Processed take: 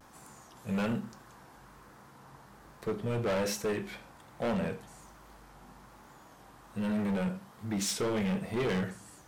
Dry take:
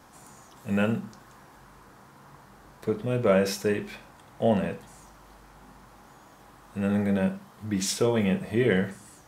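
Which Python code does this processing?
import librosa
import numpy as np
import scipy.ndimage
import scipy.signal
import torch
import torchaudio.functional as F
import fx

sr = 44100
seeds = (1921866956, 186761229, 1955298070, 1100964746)

y = np.clip(x, -10.0 ** (-25.0 / 20.0), 10.0 ** (-25.0 / 20.0))
y = fx.vibrato(y, sr, rate_hz=1.2, depth_cents=69.0)
y = y * 10.0 ** (-2.5 / 20.0)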